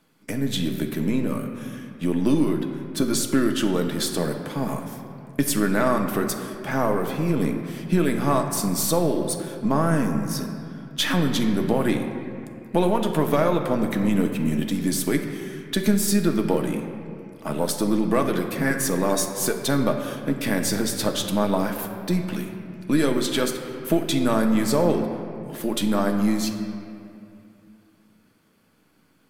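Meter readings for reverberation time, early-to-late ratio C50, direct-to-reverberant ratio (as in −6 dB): 2.5 s, 6.5 dB, 3.5 dB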